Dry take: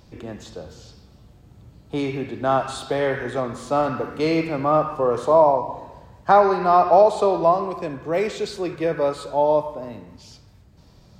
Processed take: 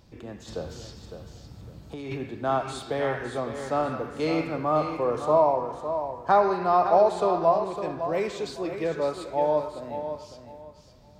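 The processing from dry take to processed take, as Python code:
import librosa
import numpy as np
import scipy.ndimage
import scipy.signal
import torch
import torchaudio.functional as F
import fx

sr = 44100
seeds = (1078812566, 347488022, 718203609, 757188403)

p1 = fx.over_compress(x, sr, threshold_db=-31.0, ratio=-1.0, at=(0.47, 2.19), fade=0.02)
p2 = p1 + fx.echo_feedback(p1, sr, ms=557, feedback_pct=24, wet_db=-9.0, dry=0)
y = p2 * 10.0 ** (-5.5 / 20.0)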